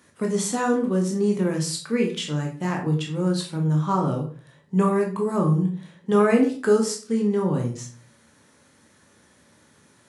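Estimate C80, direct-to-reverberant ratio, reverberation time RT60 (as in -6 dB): 13.0 dB, 0.5 dB, 0.40 s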